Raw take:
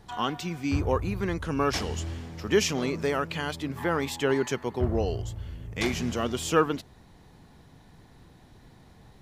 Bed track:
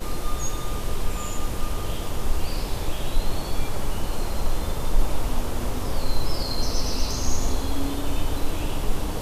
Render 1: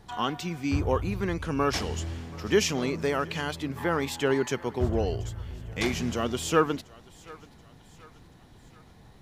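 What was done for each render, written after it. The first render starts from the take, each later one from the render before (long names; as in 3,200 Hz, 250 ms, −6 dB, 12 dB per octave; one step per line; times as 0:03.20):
feedback echo with a high-pass in the loop 731 ms, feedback 52%, high-pass 510 Hz, level −21 dB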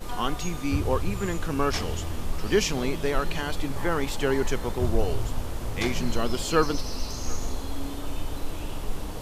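mix in bed track −6.5 dB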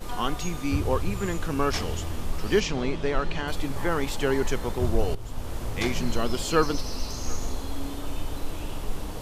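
0:02.60–0:03.48: high-frequency loss of the air 88 metres
0:05.15–0:05.55: fade in, from −14.5 dB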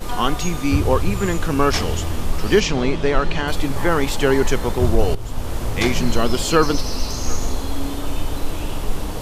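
level +8 dB
brickwall limiter −3 dBFS, peak gain reduction 3 dB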